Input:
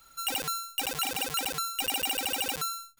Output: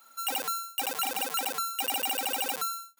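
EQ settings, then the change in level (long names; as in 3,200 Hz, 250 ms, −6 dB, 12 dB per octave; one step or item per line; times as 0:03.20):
Chebyshev high-pass with heavy ripple 170 Hz, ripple 3 dB
parametric band 990 Hz +5.5 dB 2 octaves
high-shelf EQ 8,700 Hz +7.5 dB
−1.5 dB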